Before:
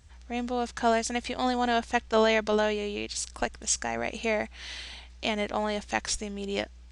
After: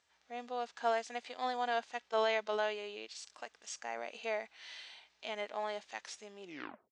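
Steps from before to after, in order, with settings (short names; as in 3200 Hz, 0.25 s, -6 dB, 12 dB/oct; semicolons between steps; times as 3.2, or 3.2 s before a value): tape stop at the end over 0.49 s; BPF 540–6100 Hz; harmonic-percussive split percussive -10 dB; gain -5.5 dB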